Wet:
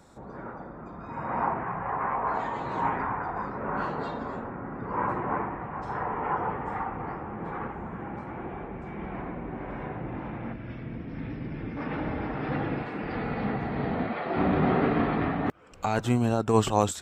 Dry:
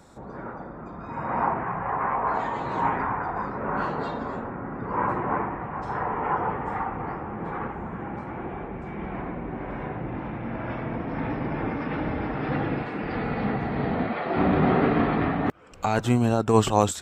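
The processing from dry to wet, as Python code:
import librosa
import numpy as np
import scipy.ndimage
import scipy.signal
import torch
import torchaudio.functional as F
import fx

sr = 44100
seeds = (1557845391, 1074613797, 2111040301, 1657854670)

y = fx.peak_eq(x, sr, hz=880.0, db=-14.5, octaves=2.0, at=(10.52, 11.76), fade=0.02)
y = F.gain(torch.from_numpy(y), -3.0).numpy()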